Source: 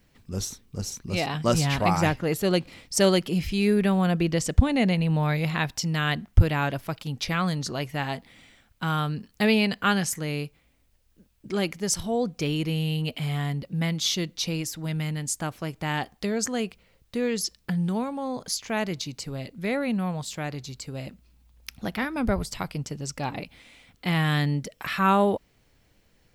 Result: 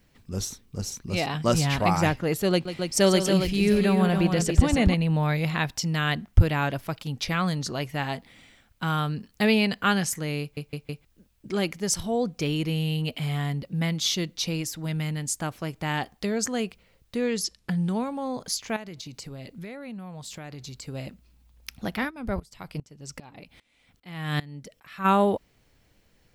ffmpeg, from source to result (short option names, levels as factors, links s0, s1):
-filter_complex "[0:a]asettb=1/sr,asplit=3[s0][s1][s2];[s0]atrim=end=2.514[s3];[s1]atrim=start=2.51:end=4.94,asetpts=PTS-STARTPTS,afade=t=in:d=0.004:c=qsin,afade=t=out:st=2.426:d=0.004:c=qsin,aecho=1:1:142|280|707:0.299|0.501|0.106,atrim=end_sample=107163[s4];[s2]atrim=start=4.936[s5];[s3][s4]acrossfade=d=0.004:c1=hsin:c2=qsin[s6];[s6][s5]acrossfade=d=0.004:c1=qsin:c2=hsin,asettb=1/sr,asplit=3[s7][s8][s9];[s7]atrim=end=17.164[s10];[s8]atrim=start=17.16:end=18.05,asetpts=PTS-STARTPTS,afade=t=in:d=0.004:c=qsin,afade=t=out:st=0.886:d=0.004:c=qsin,lowpass=f=12000:w=0.5412,lowpass=f=12000:w=1.3066[s11];[s9]atrim=start=18.046[s12];[s10][s11]acrossfade=d=0.004:c1=hsin:c2=qsin[s13];[s13][s12]acrossfade=d=0.004:c1=qsin:c2=hsin,asettb=1/sr,asplit=3[s14][s15][s16];[s14]atrim=end=18.764[s17];[s15]atrim=start=18.76:end=20.83,asetpts=PTS-STARTPTS,afade=t=in:d=0.004:c=qsin,afade=t=out:st=2.066:d=0.004:c=qsin,acompressor=threshold=0.0178:ratio=8:attack=3.2:release=140:knee=1:detection=peak[s18];[s16]atrim=start=20.826[s19];[s17][s18]acrossfade=d=0.004:c1=hsin:c2=qsin[s20];[s20][s19]acrossfade=d=0.004:c1=qsin:c2=hsin,asplit=3[s21][s22][s23];[s21]afade=t=out:st=22.09:d=0.02[s24];[s22]aeval=exprs='val(0)*pow(10,-22*if(lt(mod(-2.5*n/s,1),2*abs(-2.5)/1000),1-mod(-2.5*n/s,1)/(2*abs(-2.5)/1000),(mod(-2.5*n/s,1)-2*abs(-2.5)/1000)/(1-2*abs(-2.5)/1000))/20)':c=same,afade=t=in:st=22.09:d=0.02,afade=t=out:st=25.04:d=0.02[s25];[s23]afade=t=in:st=25.04:d=0.02[s26];[s24][s25][s26]amix=inputs=3:normalize=0,asplit=5[s27][s28][s29][s30][s31];[s27]atrim=end=10.572[s32];[s28]atrim=start=10.408:end=10.572[s33];[s29]atrim=start=10.408:end=10.572[s34];[s30]atrim=start=10.408:end=10.572[s35];[s31]atrim=start=11.048[s36];[s32][s33]acrossfade=d=0.004:c1=hsin:c2=hsin[s37];[s37][s34]acrossfade=d=0.004:c1=hsin:c2=hsin[s38];[s38][s35]acrossfade=d=0.004:c1=hsin:c2=hsin[s39];[s39][s36]acrossfade=d=0.004:c1=hsin:c2=hsin"